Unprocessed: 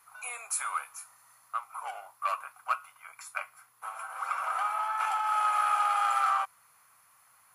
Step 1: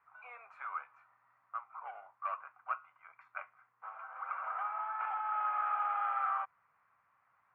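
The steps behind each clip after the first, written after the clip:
low-pass filter 2,100 Hz 24 dB per octave
level −7 dB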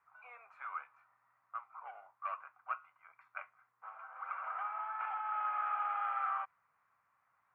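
dynamic equaliser 2,800 Hz, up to +4 dB, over −49 dBFS, Q 0.74
level −3.5 dB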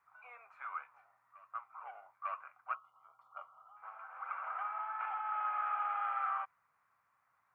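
backwards echo 898 ms −19.5 dB
gain on a spectral selection 0:02.75–0:03.77, 1,400–2,800 Hz −21 dB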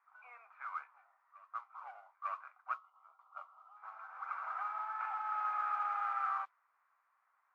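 noise that follows the level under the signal 20 dB
band-pass filter 740–2,200 Hz
level +1 dB

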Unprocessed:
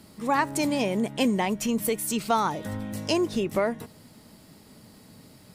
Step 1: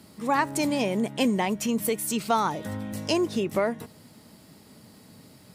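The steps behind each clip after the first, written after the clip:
high-pass filter 67 Hz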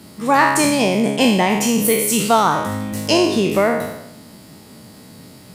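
peak hold with a decay on every bin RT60 0.88 s
level +7.5 dB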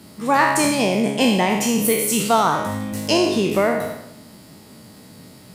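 convolution reverb RT60 0.45 s, pre-delay 35 ms, DRR 12 dB
level −2.5 dB

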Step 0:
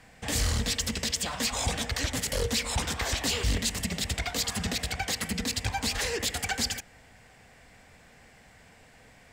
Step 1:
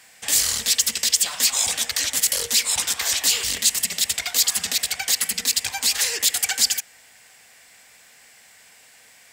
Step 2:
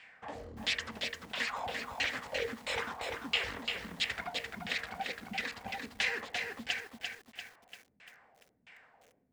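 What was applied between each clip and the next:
spectral tilt +4.5 dB per octave
auto-filter low-pass saw down 1.5 Hz 200–2,900 Hz; feedback echo at a low word length 344 ms, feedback 55%, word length 8 bits, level −4.5 dB; level −7 dB

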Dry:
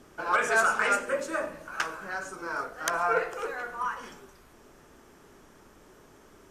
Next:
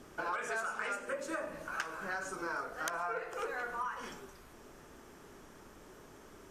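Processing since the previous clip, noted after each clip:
downward compressor 10 to 1, threshold −34 dBFS, peak gain reduction 15 dB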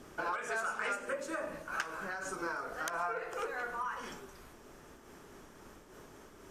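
amplitude modulation by smooth noise, depth 55%
level +3 dB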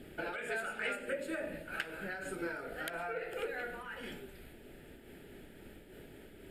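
phaser with its sweep stopped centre 2,600 Hz, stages 4
level +3.5 dB

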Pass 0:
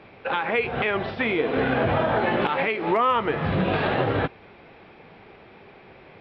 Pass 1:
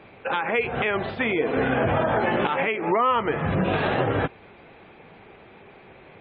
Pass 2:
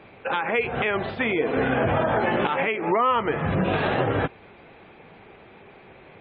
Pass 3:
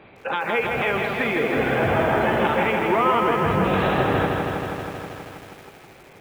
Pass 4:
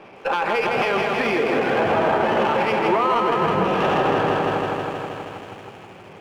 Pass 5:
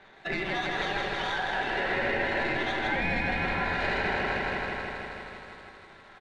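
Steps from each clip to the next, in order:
gate on every frequency bin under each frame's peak −30 dB strong
no processing that can be heard
feedback echo at a low word length 160 ms, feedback 80%, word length 8 bits, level −4 dB
brickwall limiter −15.5 dBFS, peak gain reduction 8 dB; convolution reverb RT60 3.5 s, pre-delay 3 ms, DRR 18 dB; windowed peak hold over 3 samples; level −2.5 dB
ring modulation 1,200 Hz; rectangular room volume 1,400 cubic metres, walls mixed, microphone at 1.1 metres; downsampling to 22,050 Hz; level −8 dB

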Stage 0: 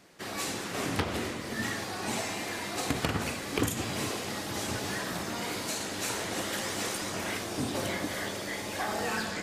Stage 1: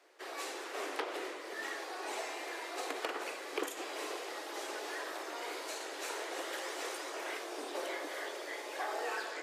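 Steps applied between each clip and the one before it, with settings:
Butterworth high-pass 340 Hz 48 dB per octave
high-shelf EQ 3,600 Hz −8 dB
level −4 dB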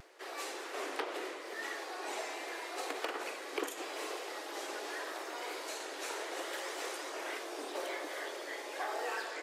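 upward compression, threshold −54 dBFS
pitch vibrato 0.79 Hz 30 cents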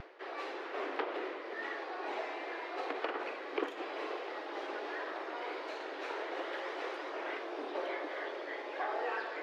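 reversed playback
upward compression, threshold −42 dBFS
reversed playback
high-frequency loss of the air 310 metres
level +3 dB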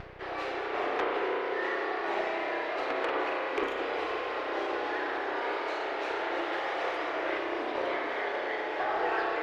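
harmonic generator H 5 −20 dB, 6 −31 dB, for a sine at −20 dBFS
spring reverb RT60 3.2 s, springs 32 ms, chirp 70 ms, DRR −1 dB
level +1.5 dB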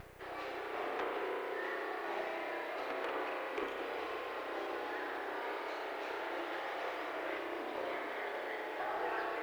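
background noise white −62 dBFS
level −8 dB

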